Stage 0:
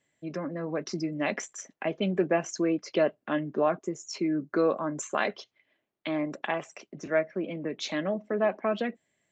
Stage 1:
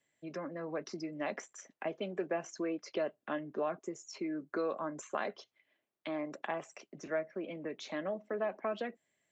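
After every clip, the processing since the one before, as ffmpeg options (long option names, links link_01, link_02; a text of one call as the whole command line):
ffmpeg -i in.wav -filter_complex "[0:a]acrossover=split=320|1700|4900[link_01][link_02][link_03][link_04];[link_01]acompressor=threshold=-40dB:ratio=4[link_05];[link_02]acompressor=threshold=-27dB:ratio=4[link_06];[link_03]acompressor=threshold=-48dB:ratio=4[link_07];[link_04]acompressor=threshold=-50dB:ratio=4[link_08];[link_05][link_06][link_07][link_08]amix=inputs=4:normalize=0,lowshelf=frequency=270:gain=-5.5,volume=-4dB" out.wav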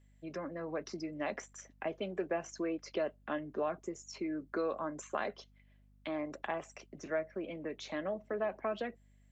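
ffmpeg -i in.wav -af "aeval=exprs='val(0)+0.000708*(sin(2*PI*50*n/s)+sin(2*PI*2*50*n/s)/2+sin(2*PI*3*50*n/s)/3+sin(2*PI*4*50*n/s)/4+sin(2*PI*5*50*n/s)/5)':channel_layout=same" out.wav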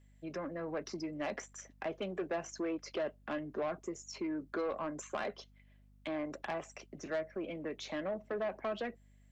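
ffmpeg -i in.wav -af "asoftclip=type=tanh:threshold=-31dB,volume=1.5dB" out.wav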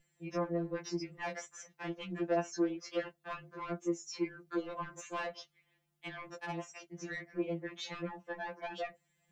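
ffmpeg -i in.wav -af "afftfilt=real='re*2.83*eq(mod(b,8),0)':imag='im*2.83*eq(mod(b,8),0)':win_size=2048:overlap=0.75,volume=3.5dB" out.wav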